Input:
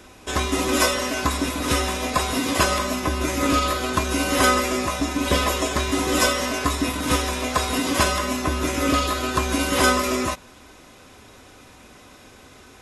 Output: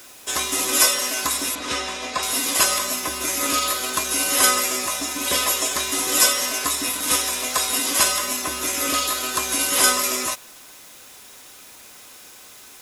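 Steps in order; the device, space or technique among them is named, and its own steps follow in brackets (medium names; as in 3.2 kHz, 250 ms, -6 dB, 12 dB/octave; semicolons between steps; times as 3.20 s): turntable without a phono preamp (RIAA curve recording; white noise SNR 25 dB); 1.55–2.23 s: distance through air 110 m; trim -3 dB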